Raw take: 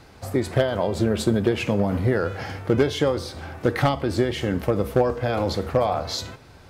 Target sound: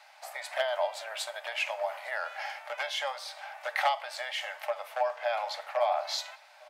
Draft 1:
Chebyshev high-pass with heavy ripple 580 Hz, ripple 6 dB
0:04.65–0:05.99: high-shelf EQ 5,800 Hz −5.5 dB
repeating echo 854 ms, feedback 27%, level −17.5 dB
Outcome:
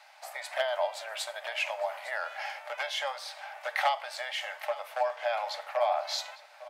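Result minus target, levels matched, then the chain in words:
echo-to-direct +9 dB
Chebyshev high-pass with heavy ripple 580 Hz, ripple 6 dB
0:04.65–0:05.99: high-shelf EQ 5,800 Hz −5.5 dB
repeating echo 854 ms, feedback 27%, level −26.5 dB

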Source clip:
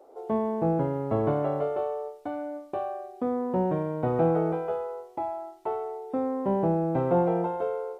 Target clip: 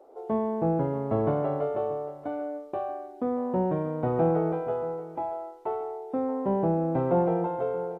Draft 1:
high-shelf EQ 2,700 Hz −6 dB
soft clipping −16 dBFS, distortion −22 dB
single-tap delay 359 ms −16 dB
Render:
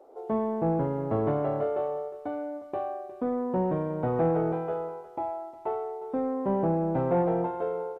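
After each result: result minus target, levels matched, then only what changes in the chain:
soft clipping: distortion +14 dB; echo 272 ms early
change: soft clipping −8 dBFS, distortion −37 dB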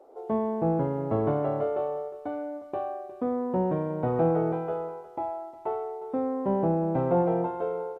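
echo 272 ms early
change: single-tap delay 631 ms −16 dB

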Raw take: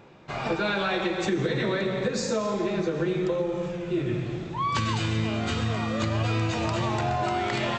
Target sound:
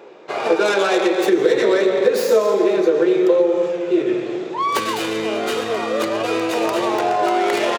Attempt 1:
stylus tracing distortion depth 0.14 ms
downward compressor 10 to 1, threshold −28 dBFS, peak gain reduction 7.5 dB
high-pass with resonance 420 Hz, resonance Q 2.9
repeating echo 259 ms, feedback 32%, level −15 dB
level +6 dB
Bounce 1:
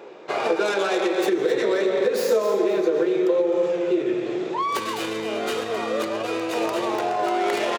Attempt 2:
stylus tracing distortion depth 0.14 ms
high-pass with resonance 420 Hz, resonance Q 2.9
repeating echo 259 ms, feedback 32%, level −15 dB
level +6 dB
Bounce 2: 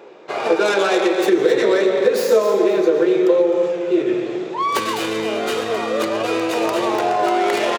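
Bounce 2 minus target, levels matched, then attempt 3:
echo-to-direct +10.5 dB
stylus tracing distortion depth 0.14 ms
high-pass with resonance 420 Hz, resonance Q 2.9
repeating echo 259 ms, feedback 32%, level −25.5 dB
level +6 dB

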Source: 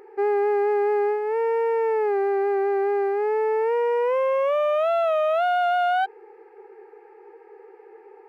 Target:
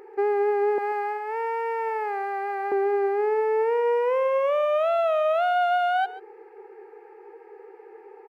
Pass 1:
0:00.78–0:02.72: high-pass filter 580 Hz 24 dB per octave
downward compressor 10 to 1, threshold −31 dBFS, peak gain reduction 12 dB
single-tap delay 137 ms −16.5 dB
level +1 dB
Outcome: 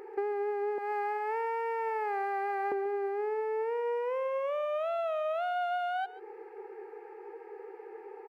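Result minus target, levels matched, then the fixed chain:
downward compressor: peak gain reduction +9.5 dB
0:00.78–0:02.72: high-pass filter 580 Hz 24 dB per octave
downward compressor 10 to 1, threshold −20 dBFS, peak gain reduction 2.5 dB
single-tap delay 137 ms −16.5 dB
level +1 dB

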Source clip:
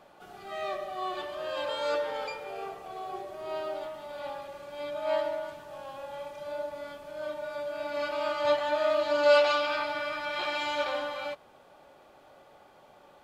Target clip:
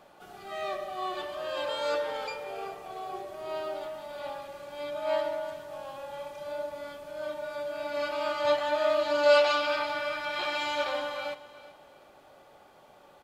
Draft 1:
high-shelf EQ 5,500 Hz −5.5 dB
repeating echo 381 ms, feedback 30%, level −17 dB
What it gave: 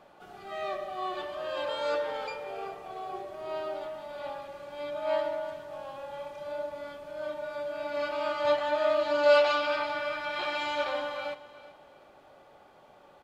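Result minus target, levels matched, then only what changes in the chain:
8,000 Hz band −5.5 dB
change: high-shelf EQ 5,500 Hz +3.5 dB

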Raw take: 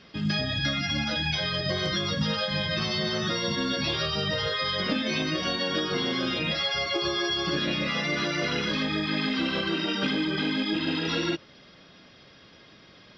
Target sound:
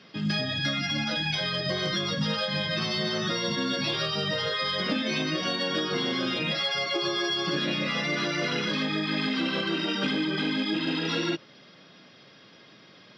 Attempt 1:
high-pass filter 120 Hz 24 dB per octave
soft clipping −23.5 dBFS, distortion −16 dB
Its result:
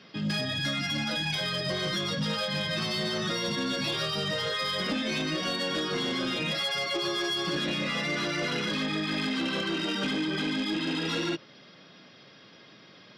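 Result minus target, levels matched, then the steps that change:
soft clipping: distortion +15 dB
change: soft clipping −14 dBFS, distortion −31 dB

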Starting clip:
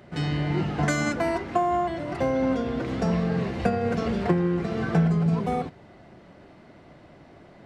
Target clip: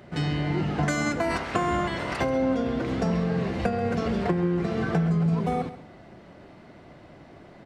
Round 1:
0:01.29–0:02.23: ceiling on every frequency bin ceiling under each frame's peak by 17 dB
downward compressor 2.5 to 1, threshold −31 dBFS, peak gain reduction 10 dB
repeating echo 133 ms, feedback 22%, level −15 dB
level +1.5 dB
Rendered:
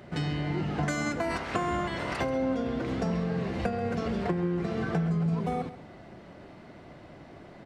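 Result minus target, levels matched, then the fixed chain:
downward compressor: peak gain reduction +4 dB
0:01.29–0:02.23: ceiling on every frequency bin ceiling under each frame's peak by 17 dB
downward compressor 2.5 to 1, threshold −24 dBFS, peak gain reduction 6 dB
repeating echo 133 ms, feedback 22%, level −15 dB
level +1.5 dB

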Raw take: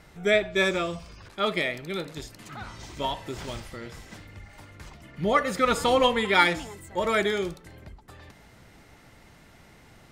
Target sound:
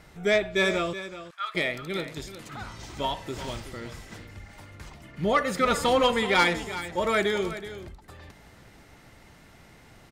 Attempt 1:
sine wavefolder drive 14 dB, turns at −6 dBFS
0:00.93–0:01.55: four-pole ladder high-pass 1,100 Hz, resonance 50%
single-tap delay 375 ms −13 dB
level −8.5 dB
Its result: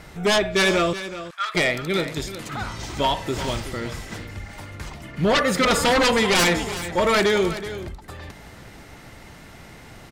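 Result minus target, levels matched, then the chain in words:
sine wavefolder: distortion +16 dB
sine wavefolder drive 5 dB, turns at −6 dBFS
0:00.93–0:01.55: four-pole ladder high-pass 1,100 Hz, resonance 50%
single-tap delay 375 ms −13 dB
level −8.5 dB

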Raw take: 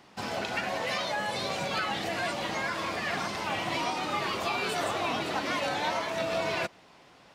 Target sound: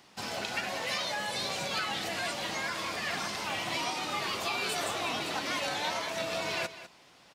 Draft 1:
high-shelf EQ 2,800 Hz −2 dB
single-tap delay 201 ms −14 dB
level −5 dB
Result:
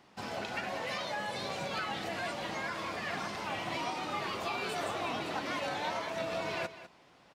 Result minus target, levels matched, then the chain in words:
4,000 Hz band −3.5 dB
high-shelf EQ 2,800 Hz +9.5 dB
single-tap delay 201 ms −14 dB
level −5 dB

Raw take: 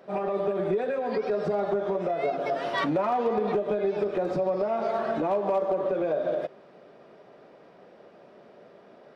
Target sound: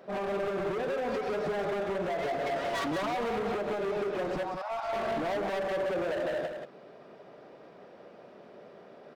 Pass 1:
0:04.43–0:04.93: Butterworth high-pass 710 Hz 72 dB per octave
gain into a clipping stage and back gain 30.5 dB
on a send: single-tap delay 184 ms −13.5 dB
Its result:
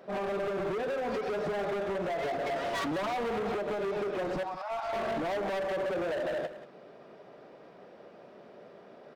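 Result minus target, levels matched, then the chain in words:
echo-to-direct −7 dB
0:04.43–0:04.93: Butterworth high-pass 710 Hz 72 dB per octave
gain into a clipping stage and back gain 30.5 dB
on a send: single-tap delay 184 ms −6.5 dB

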